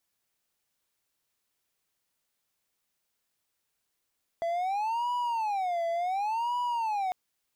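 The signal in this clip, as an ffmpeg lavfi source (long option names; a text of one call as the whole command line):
ffmpeg -f lavfi -i "aevalsrc='0.0562*(1-4*abs(mod((824.5*t-152.5/(2*PI*0.69)*sin(2*PI*0.69*t))+0.25,1)-0.5))':duration=2.7:sample_rate=44100" out.wav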